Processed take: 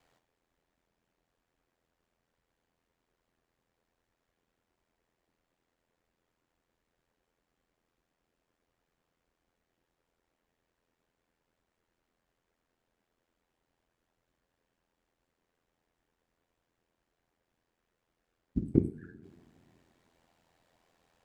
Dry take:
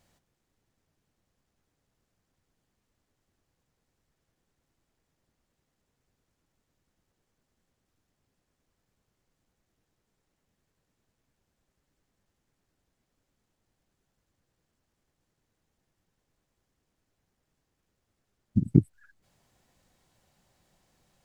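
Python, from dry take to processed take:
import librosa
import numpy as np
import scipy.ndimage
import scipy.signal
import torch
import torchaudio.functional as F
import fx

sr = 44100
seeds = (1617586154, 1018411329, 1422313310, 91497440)

y = fx.bass_treble(x, sr, bass_db=-9, treble_db=-9)
y = fx.rev_double_slope(y, sr, seeds[0], early_s=0.47, late_s=2.5, knee_db=-18, drr_db=7.0)
y = y * np.sin(2.0 * np.pi * 42.0 * np.arange(len(y)) / sr)
y = y * librosa.db_to_amplitude(3.5)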